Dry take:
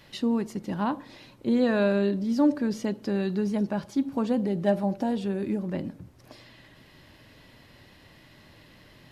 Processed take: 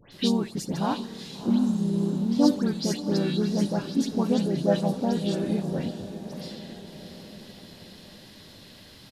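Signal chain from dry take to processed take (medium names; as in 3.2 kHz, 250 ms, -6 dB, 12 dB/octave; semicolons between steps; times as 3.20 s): spectral replace 1.51–2.13 s, 390–5300 Hz after; harmony voices -3 st -4 dB; resonant high shelf 3 kHz +8 dB, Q 1.5; phase dispersion highs, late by 125 ms, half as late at 2.3 kHz; on a send: echo that smears into a reverb 681 ms, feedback 54%, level -12 dB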